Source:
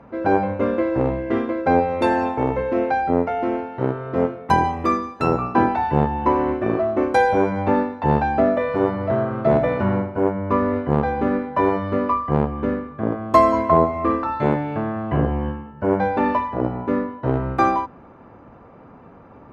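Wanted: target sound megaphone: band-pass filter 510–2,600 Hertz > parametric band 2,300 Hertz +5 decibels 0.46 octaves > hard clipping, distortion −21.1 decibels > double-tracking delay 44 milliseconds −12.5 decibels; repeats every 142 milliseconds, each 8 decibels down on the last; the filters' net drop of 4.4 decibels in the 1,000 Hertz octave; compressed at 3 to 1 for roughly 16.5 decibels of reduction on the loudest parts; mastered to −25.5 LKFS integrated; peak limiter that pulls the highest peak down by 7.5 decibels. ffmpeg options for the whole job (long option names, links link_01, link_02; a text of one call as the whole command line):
ffmpeg -i in.wav -filter_complex "[0:a]equalizer=frequency=1000:width_type=o:gain=-5,acompressor=threshold=-37dB:ratio=3,alimiter=level_in=3.5dB:limit=-24dB:level=0:latency=1,volume=-3.5dB,highpass=510,lowpass=2600,equalizer=frequency=2300:width_type=o:width=0.46:gain=5,aecho=1:1:142|284|426|568|710:0.398|0.159|0.0637|0.0255|0.0102,asoftclip=type=hard:threshold=-33.5dB,asplit=2[link_01][link_02];[link_02]adelay=44,volume=-12.5dB[link_03];[link_01][link_03]amix=inputs=2:normalize=0,volume=16dB" out.wav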